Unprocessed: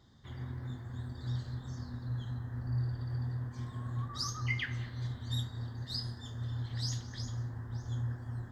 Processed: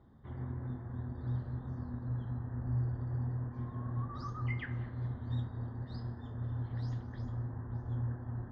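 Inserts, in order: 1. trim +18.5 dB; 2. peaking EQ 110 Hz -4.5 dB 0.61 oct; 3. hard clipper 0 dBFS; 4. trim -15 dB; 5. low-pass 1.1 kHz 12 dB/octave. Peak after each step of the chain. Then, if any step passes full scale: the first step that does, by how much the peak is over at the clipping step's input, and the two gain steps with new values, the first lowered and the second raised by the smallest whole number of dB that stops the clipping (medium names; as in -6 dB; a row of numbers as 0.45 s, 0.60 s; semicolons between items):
-3.0 dBFS, -4.0 dBFS, -4.0 dBFS, -19.0 dBFS, -25.5 dBFS; nothing clips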